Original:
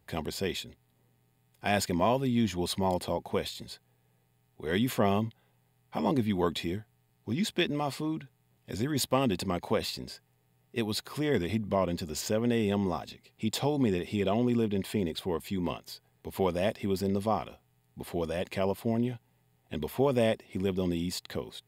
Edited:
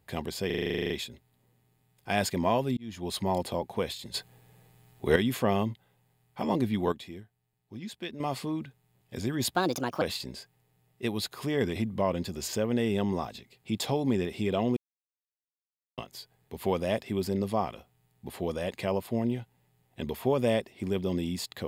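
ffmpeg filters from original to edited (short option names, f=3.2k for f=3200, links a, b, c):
-filter_complex "[0:a]asplit=21[a][b][c][d][e][f][g][h][i][j][k][l][m][n][o][p][q][r][s][t][u];[a]atrim=end=0.502[v];[b]atrim=start=0.458:end=0.502[w];[c]atrim=start=0.458:end=0.502[x];[d]atrim=start=0.458:end=0.502[y];[e]atrim=start=0.458:end=0.502[z];[f]atrim=start=0.458:end=0.502[aa];[g]atrim=start=0.458:end=0.502[ab];[h]atrim=start=0.458:end=0.502[ac];[i]atrim=start=0.458:end=0.502[ad];[j]atrim=start=0.458:end=0.502[ae];[k]atrim=start=0.458:end=0.502[af];[l]atrim=start=0.458:end=2.33,asetpts=PTS-STARTPTS,afade=t=out:st=1.868:d=0.004:c=hsin[ag];[m]atrim=start=2.33:end=3.702,asetpts=PTS-STARTPTS,afade=t=in:d=0.43[ah];[n]atrim=start=3.698:end=4.722,asetpts=PTS-STARTPTS,volume=11dB[ai];[o]atrim=start=4.718:end=6.482[aj];[p]atrim=start=6.478:end=7.762,asetpts=PTS-STARTPTS,volume=-10dB[ak];[q]atrim=start=7.758:end=9.124[al];[r]atrim=start=9.12:end=9.75,asetpts=PTS-STARTPTS,asetrate=60858,aresample=44100[am];[s]atrim=start=9.746:end=14.5,asetpts=PTS-STARTPTS,afade=t=out:st=4.75:d=0.004:c=hsin[an];[t]atrim=start=14.5:end=15.71,asetpts=PTS-STARTPTS,volume=0[ao];[u]atrim=start=15.71,asetpts=PTS-STARTPTS,afade=t=in:d=0.004:c=hsin[ap];[v][w]acrossfade=d=0.004:c1=hsin:c2=hsin[aq];[aq][x]acrossfade=d=0.004:c1=hsin:c2=hsin[ar];[ar][y]acrossfade=d=0.004:c1=hsin:c2=hsin[as];[as][z]acrossfade=d=0.004:c1=hsin:c2=hsin[at];[at][aa]acrossfade=d=0.004:c1=hsin:c2=hsin[au];[au][ab]acrossfade=d=0.004:c1=hsin:c2=hsin[av];[av][ac]acrossfade=d=0.004:c1=hsin:c2=hsin[aw];[aw][ad]acrossfade=d=0.004:c1=hsin:c2=hsin[ax];[ax][ae]acrossfade=d=0.004:c1=hsin:c2=hsin[ay];[ay][af]acrossfade=d=0.004:c1=hsin:c2=hsin[az];[ag][ah]concat=n=2:v=0:a=1[ba];[az][ba]acrossfade=d=0.004:c1=hsin:c2=hsin[bb];[bb][ai]acrossfade=d=0.004:c1=hsin:c2=hsin[bc];[bc][aj]acrossfade=d=0.004:c1=hsin:c2=hsin[bd];[bd][ak]acrossfade=d=0.004:c1=hsin:c2=hsin[be];[be][al]acrossfade=d=0.004:c1=hsin:c2=hsin[bf];[bf][am]acrossfade=d=0.004:c1=hsin:c2=hsin[bg];[an][ao][ap]concat=n=3:v=0:a=1[bh];[bg][bh]acrossfade=d=0.004:c1=hsin:c2=hsin"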